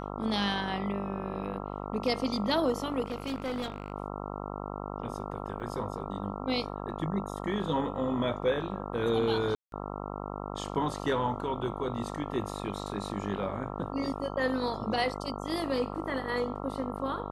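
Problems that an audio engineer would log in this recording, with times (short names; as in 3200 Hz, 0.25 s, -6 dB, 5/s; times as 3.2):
buzz 50 Hz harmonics 27 -38 dBFS
3.04–3.92 clipped -29.5 dBFS
5.6 gap 2.4 ms
9.55–9.72 gap 0.172 s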